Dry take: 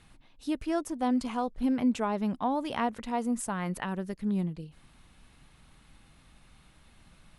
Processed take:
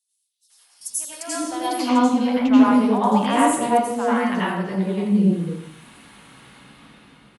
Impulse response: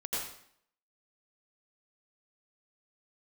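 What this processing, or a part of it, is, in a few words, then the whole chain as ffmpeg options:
far laptop microphone: -filter_complex "[1:a]atrim=start_sample=2205[link_01];[0:a][link_01]afir=irnorm=-1:irlink=0,highpass=170,dynaudnorm=framelen=240:gausssize=9:maxgain=15.5dB,asettb=1/sr,asplit=3[link_02][link_03][link_04];[link_02]atrim=end=0.814[link_05];[link_03]atrim=start=0.81:end=1.89,asetpts=PTS-STARTPTS,afade=type=in:duration=0.004:curve=qsin,afade=type=out:start_time=1.076:duration=0.004:curve=qsin,bass=frequency=250:gain=3,treble=frequency=4000:gain=14[link_06];[link_04]atrim=start=1.886[link_07];[link_05][link_06]acrossfade=duration=0.004:curve1=hsin:curve2=qsin[link_08];[link_08][link_07]acrossfade=duration=0.004:curve1=qsin:curve2=hsin,acrossover=split=590|5200[link_09][link_10][link_11];[link_10]adelay=500[link_12];[link_09]adelay=800[link_13];[link_13][link_12][link_11]amix=inputs=3:normalize=0,volume=-2.5dB"

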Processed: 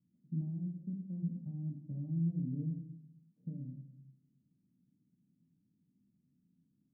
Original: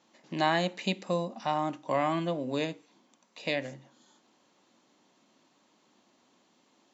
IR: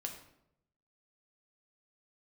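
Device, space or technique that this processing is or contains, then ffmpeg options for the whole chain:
club heard from the street: -filter_complex "[0:a]asplit=3[link_01][link_02][link_03];[link_01]afade=type=out:start_time=0.57:duration=0.02[link_04];[link_02]highpass=250,afade=type=in:start_time=0.57:duration=0.02,afade=type=out:start_time=1.22:duration=0.02[link_05];[link_03]afade=type=in:start_time=1.22:duration=0.02[link_06];[link_04][link_05][link_06]amix=inputs=3:normalize=0,alimiter=limit=-19dB:level=0:latency=1:release=477,lowpass=frequency=170:width=0.5412,lowpass=frequency=170:width=1.3066[link_07];[1:a]atrim=start_sample=2205[link_08];[link_07][link_08]afir=irnorm=-1:irlink=0,volume=7.5dB"

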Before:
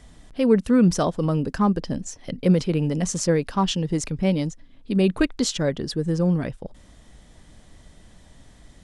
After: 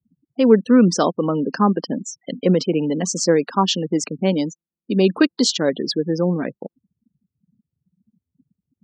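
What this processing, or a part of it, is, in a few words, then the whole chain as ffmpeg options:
television speaker: -af "afftfilt=real='re*gte(hypot(re,im),0.0178)':imag='im*gte(hypot(re,im),0.0178)':win_size=1024:overlap=0.75,highpass=frequency=210:width=0.5412,highpass=frequency=210:width=1.3066,equalizer=frequency=620:width_type=q:width=4:gain=-3,equalizer=frequency=2200:width_type=q:width=4:gain=-5,equalizer=frequency=4500:width_type=q:width=4:gain=4,lowpass=frequency=7300:width=0.5412,lowpass=frequency=7300:width=1.3066,volume=6dB"

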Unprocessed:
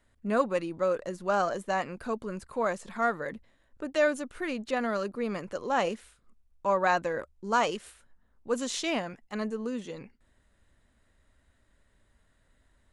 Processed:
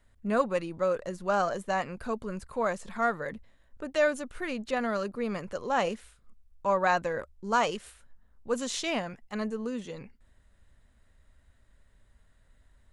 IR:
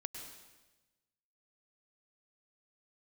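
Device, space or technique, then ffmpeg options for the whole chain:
low shelf boost with a cut just above: -af "lowshelf=frequency=100:gain=7.5,equalizer=frequency=310:width_type=o:width=0.55:gain=-4"

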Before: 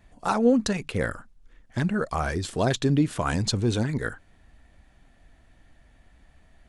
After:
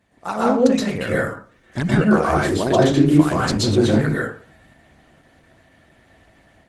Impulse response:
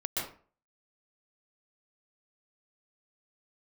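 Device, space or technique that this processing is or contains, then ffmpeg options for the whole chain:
far-field microphone of a smart speaker: -filter_complex "[0:a]asettb=1/sr,asplit=3[link_01][link_02][link_03];[link_01]atrim=end=1.874[link_04];[link_02]atrim=start=1.87:end=3.52,asetpts=PTS-STARTPTS,afade=type=in:duration=0.004:curve=qsin,afade=type=out:start_time=1.646:duration=0.004:curve=qsin,adynamicequalizer=threshold=0.01:dfrequency=350:dqfactor=3.2:tfrequency=350:tqfactor=3.2:attack=5:release=100:ratio=0.375:range=3:mode=boostabove:tftype=bell[link_05];[link_03]atrim=start=3.516[link_06];[link_04][link_05]acrossfade=duration=0.004:curve1=hsin:curve2=qsin[link_07];[link_07][link_06]acrossfade=duration=0.004:curve1=qsin:curve2=hsin[link_08];[1:a]atrim=start_sample=2205[link_09];[link_08][link_09]afir=irnorm=-1:irlink=0,highpass=120,dynaudnorm=framelen=220:gausssize=3:maxgain=5.5dB" -ar 48000 -c:a libopus -b:a 16k

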